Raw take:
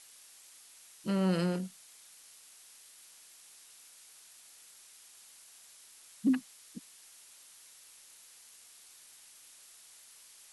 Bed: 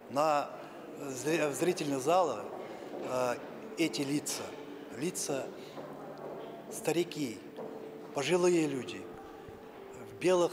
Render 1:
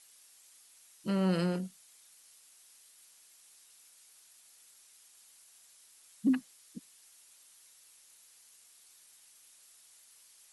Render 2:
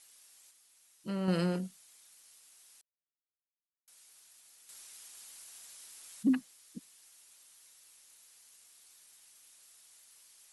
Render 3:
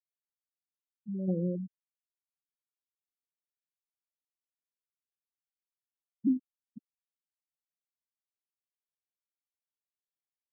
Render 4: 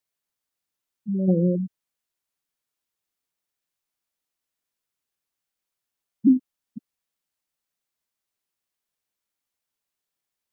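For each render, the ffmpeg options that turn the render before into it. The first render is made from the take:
-af "afftdn=nr=6:nf=-57"
-filter_complex "[0:a]asettb=1/sr,asplit=3[s0][s1][s2];[s0]atrim=end=2.814[s3];[s1]atrim=start=2.81:end=3.88,asetpts=PTS-STARTPTS,afade=t=in:d=0.004:c=qsin,afade=t=out:st=1.066:d=0.004:c=qsin,acrusher=bits=3:dc=4:mix=0:aa=0.000001[s4];[s2]atrim=start=3.876[s5];[s3][s4]acrossfade=d=0.004:c1=hsin:c2=qsin[s6];[s6][s5]acrossfade=d=0.004:c1=qsin:c2=hsin,asplit=5[s7][s8][s9][s10][s11];[s7]atrim=end=0.512[s12];[s8]atrim=start=0.508:end=1.282,asetpts=PTS-STARTPTS,volume=0.562[s13];[s9]atrim=start=1.278:end=4.692[s14];[s10]atrim=start=4.688:end=6.232,asetpts=PTS-STARTPTS,volume=2.51[s15];[s11]atrim=start=6.228[s16];[s12][s13]acrossfade=d=0.004:c1=hsin:c2=hsin[s17];[s17][s14]acrossfade=d=0.004:c1=hsin:c2=hsin[s18];[s18][s15]acrossfade=d=0.004:c1=hsin:c2=hsin[s19];[s19][s16]acrossfade=d=0.004:c1=hsin:c2=hsin"
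-af "lowpass=f=3200:p=1,afftfilt=real='re*gte(hypot(re,im),0.0794)':imag='im*gte(hypot(re,im),0.0794)':win_size=1024:overlap=0.75"
-af "volume=3.35"

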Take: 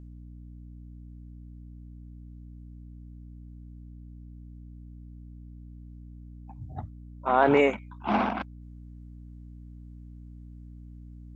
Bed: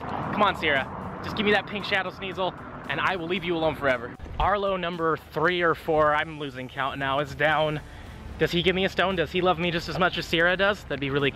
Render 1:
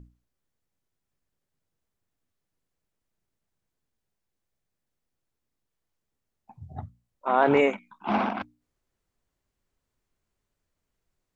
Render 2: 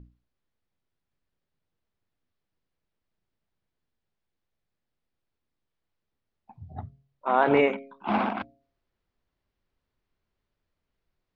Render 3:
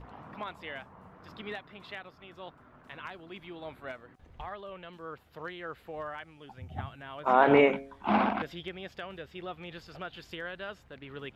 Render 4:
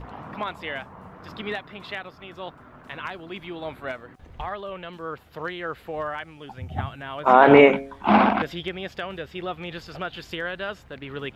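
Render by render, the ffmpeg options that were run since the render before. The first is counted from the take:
-af "bandreject=f=60:t=h:w=6,bandreject=f=120:t=h:w=6,bandreject=f=180:t=h:w=6,bandreject=f=240:t=h:w=6,bandreject=f=300:t=h:w=6"
-af "lowpass=f=4700:w=0.5412,lowpass=f=4700:w=1.3066,bandreject=f=137.1:t=h:w=4,bandreject=f=274.2:t=h:w=4,bandreject=f=411.3:t=h:w=4,bandreject=f=548.4:t=h:w=4,bandreject=f=685.5:t=h:w=4"
-filter_complex "[1:a]volume=0.126[s0];[0:a][s0]amix=inputs=2:normalize=0"
-af "volume=2.82,alimiter=limit=0.891:level=0:latency=1"

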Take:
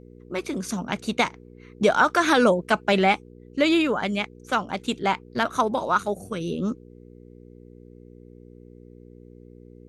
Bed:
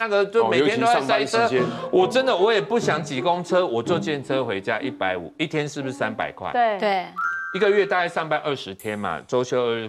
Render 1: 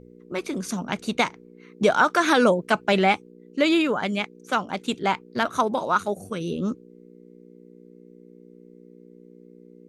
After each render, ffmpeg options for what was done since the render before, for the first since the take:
-af "bandreject=f=60:t=h:w=4,bandreject=f=120:t=h:w=4"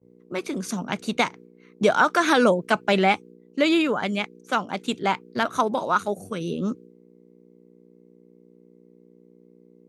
-af "highpass=f=89:w=0.5412,highpass=f=89:w=1.3066,agate=range=0.0224:threshold=0.00794:ratio=3:detection=peak"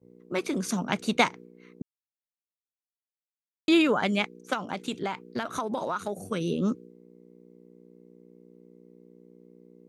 -filter_complex "[0:a]asettb=1/sr,asplit=3[s0][s1][s2];[s0]atrim=end=4.534[s3];[s1]atrim=start=4.53:end=6.3,asetpts=PTS-STARTPTS,afade=t=in:d=0.004:c=qsin,afade=t=out:st=1.766:d=0.004:c=qsin,acompressor=threshold=0.0501:ratio=6:attack=3.2:release=140:knee=1:detection=peak[s4];[s2]atrim=start=6.296[s5];[s3][s4]acrossfade=d=0.004:c1=hsin:c2=qsin[s6];[s6][s5]acrossfade=d=0.004:c1=qsin:c2=hsin,asplit=3[s7][s8][s9];[s7]atrim=end=1.82,asetpts=PTS-STARTPTS,afade=t=out:st=1.816:d=0.004:c=hsin[s10];[s8]atrim=start=1.82:end=3.68,asetpts=PTS-STARTPTS,volume=0[s11];[s9]atrim=start=3.68,asetpts=PTS-STARTPTS,afade=t=in:d=0.004:c=hsin[s12];[s10][s11][s12]concat=n=3:v=0:a=1"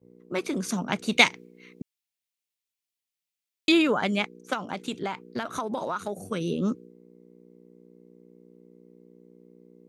-filter_complex "[0:a]asettb=1/sr,asplit=3[s0][s1][s2];[s0]atrim=end=1.124[s3];[s1]atrim=start=1.12:end=3.72,asetpts=PTS-STARTPTS,afade=t=in:d=0.004:c=qsin,afade=t=out:st=2.596:d=0.004:c=qsin,highshelf=f=1800:t=q:w=1.5:g=7[s4];[s2]atrim=start=3.716[s5];[s3][s4]acrossfade=d=0.004:c1=hsin:c2=qsin[s6];[s6][s5]acrossfade=d=0.004:c1=qsin:c2=hsin"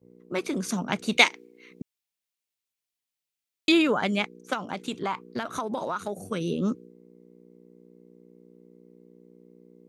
-filter_complex "[0:a]asettb=1/sr,asplit=3[s0][s1][s2];[s0]atrim=end=1.184[s3];[s1]atrim=start=1.18:end=1.71,asetpts=PTS-STARTPTS,afade=t=in:d=0.004:c=qsin,afade=t=out:st=0.526:d=0.004:c=qsin,highpass=f=260:w=0.5412,highpass=f=260:w=1.3066[s4];[s2]atrim=start=1.706[s5];[s3][s4]acrossfade=d=0.004:c1=hsin:c2=qsin[s6];[s6][s5]acrossfade=d=0.004:c1=qsin:c2=hsin,asettb=1/sr,asplit=3[s7][s8][s9];[s7]atrim=end=4.934[s10];[s8]atrim=start=4.93:end=5.34,asetpts=PTS-STARTPTS,afade=t=in:d=0.004:c=qsin,afade=t=out:st=0.406:d=0.004:c=qsin,equalizer=f=1100:w=4.8:g=13[s11];[s9]atrim=start=5.336[s12];[s10][s11]acrossfade=d=0.004:c1=hsin:c2=qsin[s13];[s13][s12]acrossfade=d=0.004:c1=qsin:c2=hsin"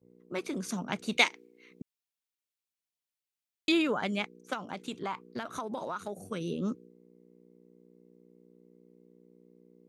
-af "volume=0.501"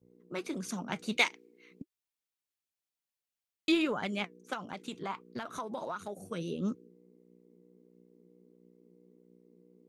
-filter_complex "[0:a]asplit=2[s0][s1];[s1]asoftclip=type=hard:threshold=0.075,volume=0.316[s2];[s0][s2]amix=inputs=2:normalize=0,flanger=delay=0.3:depth=6.1:regen=65:speed=1.5:shape=sinusoidal"

